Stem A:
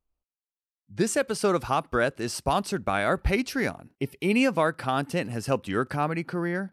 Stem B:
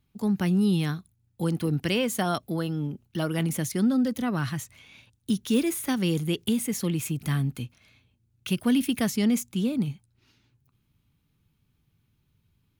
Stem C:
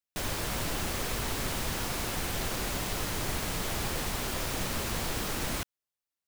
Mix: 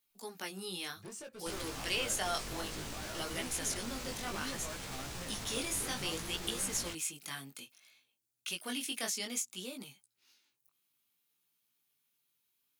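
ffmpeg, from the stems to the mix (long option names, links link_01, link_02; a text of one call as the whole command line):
ffmpeg -i stem1.wav -i stem2.wav -i stem3.wav -filter_complex "[0:a]asoftclip=type=tanh:threshold=-28dB,adelay=50,volume=-13dB[link_01];[1:a]highpass=500,highshelf=frequency=4400:gain=10,volume=-6dB[link_02];[2:a]alimiter=level_in=6dB:limit=-24dB:level=0:latency=1,volume=-6dB,adelay=1300,volume=-2dB[link_03];[link_01][link_02][link_03]amix=inputs=3:normalize=0,highshelf=frequency=4000:gain=6,flanger=delay=15:depth=7.1:speed=0.61,acrossover=split=9200[link_04][link_05];[link_05]acompressor=threshold=-55dB:ratio=4:attack=1:release=60[link_06];[link_04][link_06]amix=inputs=2:normalize=0" out.wav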